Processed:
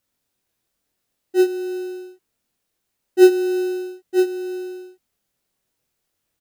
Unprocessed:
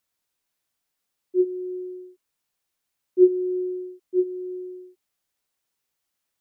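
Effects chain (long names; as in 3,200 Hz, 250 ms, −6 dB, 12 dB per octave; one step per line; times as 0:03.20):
in parallel at −9 dB: decimation without filtering 39×
on the sum: double-tracking delay 24 ms −3 dB
level +1.5 dB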